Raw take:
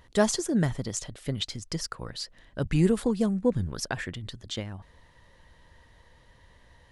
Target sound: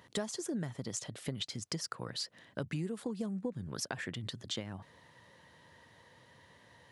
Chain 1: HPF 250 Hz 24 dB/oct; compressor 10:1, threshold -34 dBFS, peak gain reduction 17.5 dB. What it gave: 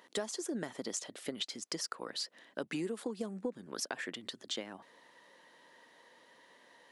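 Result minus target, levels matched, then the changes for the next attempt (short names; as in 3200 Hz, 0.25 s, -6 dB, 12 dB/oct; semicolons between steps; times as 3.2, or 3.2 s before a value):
125 Hz band -11.5 dB
change: HPF 110 Hz 24 dB/oct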